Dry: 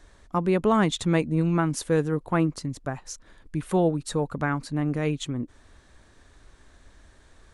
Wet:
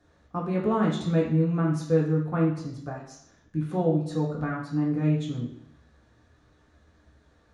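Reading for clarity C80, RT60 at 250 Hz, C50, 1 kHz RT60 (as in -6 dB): 8.0 dB, 0.70 s, 4.5 dB, 0.75 s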